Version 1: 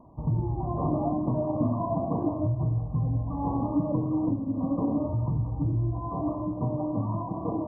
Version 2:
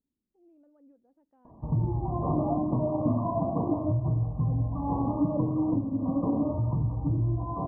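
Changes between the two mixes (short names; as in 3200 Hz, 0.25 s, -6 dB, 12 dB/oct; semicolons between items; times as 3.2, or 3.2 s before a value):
speech -9.0 dB; background: entry +1.45 s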